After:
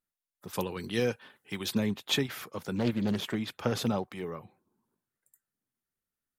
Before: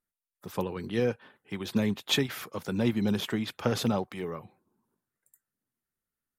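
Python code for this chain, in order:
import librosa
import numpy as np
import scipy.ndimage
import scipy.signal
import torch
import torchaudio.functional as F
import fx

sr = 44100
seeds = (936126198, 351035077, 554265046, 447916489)

y = fx.high_shelf(x, sr, hz=2500.0, db=11.0, at=(0.53, 1.75))
y = fx.doppler_dist(y, sr, depth_ms=0.31, at=(2.76, 3.35))
y = y * 10.0 ** (-2.0 / 20.0)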